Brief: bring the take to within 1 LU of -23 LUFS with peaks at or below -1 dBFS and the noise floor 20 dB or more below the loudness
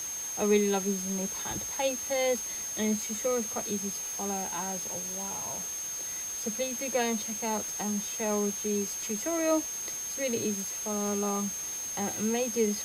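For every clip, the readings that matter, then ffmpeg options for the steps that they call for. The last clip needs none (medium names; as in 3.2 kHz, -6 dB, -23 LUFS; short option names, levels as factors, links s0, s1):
steady tone 6.4 kHz; tone level -34 dBFS; noise floor -36 dBFS; noise floor target -50 dBFS; loudness -30.0 LUFS; peak level -13.5 dBFS; loudness target -23.0 LUFS
-> -af "bandreject=f=6400:w=30"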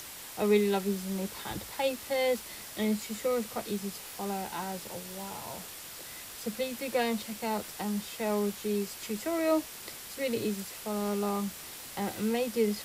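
steady tone not found; noise floor -45 dBFS; noise floor target -53 dBFS
-> -af "afftdn=nr=8:nf=-45"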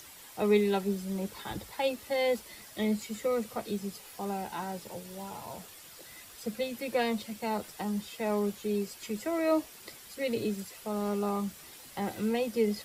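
noise floor -51 dBFS; noise floor target -53 dBFS
-> -af "afftdn=nr=6:nf=-51"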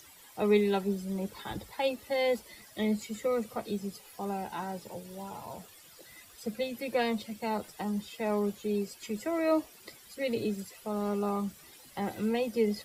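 noise floor -55 dBFS; loudness -33.0 LUFS; peak level -14.5 dBFS; loudness target -23.0 LUFS
-> -af "volume=3.16"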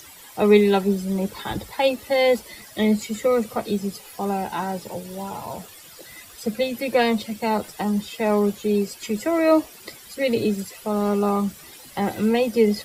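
loudness -23.0 LUFS; peak level -4.5 dBFS; noise floor -45 dBFS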